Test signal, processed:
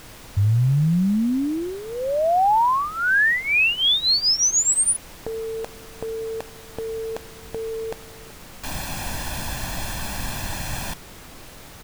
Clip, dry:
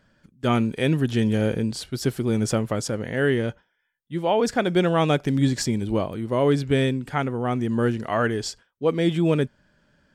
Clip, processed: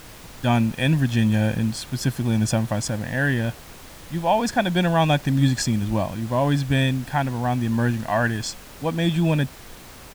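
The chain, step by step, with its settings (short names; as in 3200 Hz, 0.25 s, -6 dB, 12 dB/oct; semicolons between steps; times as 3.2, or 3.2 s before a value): comb 1.2 ms, depth 78%; added noise pink -42 dBFS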